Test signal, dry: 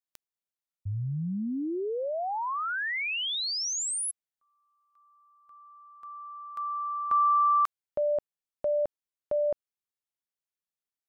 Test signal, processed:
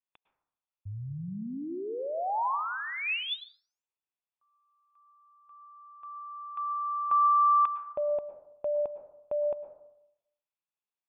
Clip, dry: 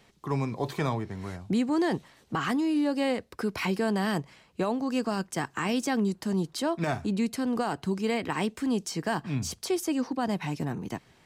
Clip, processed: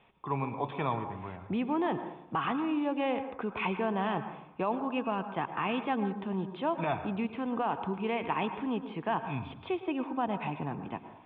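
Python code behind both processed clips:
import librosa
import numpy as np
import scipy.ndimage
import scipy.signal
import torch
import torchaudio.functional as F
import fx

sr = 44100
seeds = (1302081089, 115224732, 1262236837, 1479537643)

y = scipy.signal.sosfilt(scipy.signal.cheby1(6, 9, 3600.0, 'lowpass', fs=sr, output='sos'), x)
y = fx.rev_plate(y, sr, seeds[0], rt60_s=0.8, hf_ratio=0.3, predelay_ms=95, drr_db=9.5)
y = y * librosa.db_to_amplitude(2.5)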